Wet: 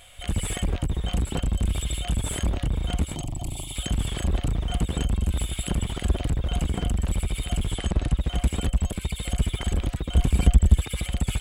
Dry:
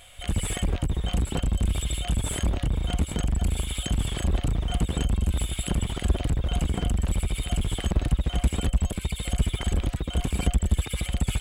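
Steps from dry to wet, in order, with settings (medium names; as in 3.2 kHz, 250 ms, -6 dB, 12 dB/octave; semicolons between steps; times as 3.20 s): 3.15–3.76 s: static phaser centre 310 Hz, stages 8; 7.72–8.17 s: steep low-pass 11 kHz 48 dB/octave; 10.10–10.77 s: bass shelf 190 Hz +7.5 dB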